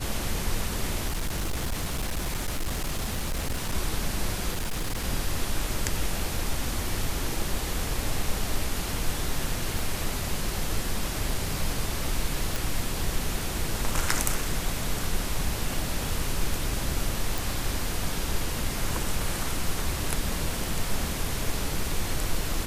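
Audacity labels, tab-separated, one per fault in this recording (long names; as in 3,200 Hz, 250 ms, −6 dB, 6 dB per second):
1.070000	3.750000	clipping −24.5 dBFS
4.510000	5.050000	clipping −25 dBFS
9.790000	9.790000	click
12.560000	12.560000	click
17.380000	17.380000	click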